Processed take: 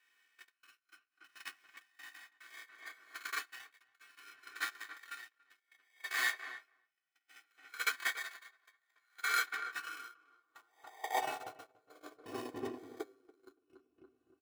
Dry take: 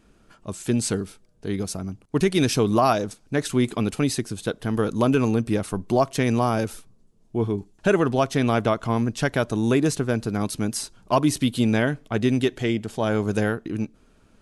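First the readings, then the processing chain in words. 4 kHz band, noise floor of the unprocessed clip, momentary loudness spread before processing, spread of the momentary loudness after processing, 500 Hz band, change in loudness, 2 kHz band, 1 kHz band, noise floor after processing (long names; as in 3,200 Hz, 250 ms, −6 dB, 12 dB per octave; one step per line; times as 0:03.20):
−12.0 dB, −58 dBFS, 10 LU, 23 LU, −27.5 dB, −16.0 dB, −7.0 dB, −15.5 dB, −85 dBFS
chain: peak hold with a rise ahead of every peak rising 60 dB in 1.80 s
dynamic equaliser 360 Hz, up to −6 dB, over −33 dBFS, Q 3.1
voice inversion scrambler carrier 2,900 Hz
decimation without filtering 16×
notch filter 960 Hz, Q 21
downward compressor 4 to 1, threshold −28 dBFS, peak gain reduction 13.5 dB
comb filter 2.7 ms, depth 87%
rectangular room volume 51 cubic metres, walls mixed, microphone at 0.54 metres
noise gate −18 dBFS, range −31 dB
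feedback echo with a low-pass in the loop 284 ms, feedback 21%, low-pass 1,500 Hz, level −8.5 dB
high-pass filter sweep 1,800 Hz → 350 Hz, 0:09.54–0:12.88
tremolo with a sine in dB 0.63 Hz, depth 25 dB
level +1 dB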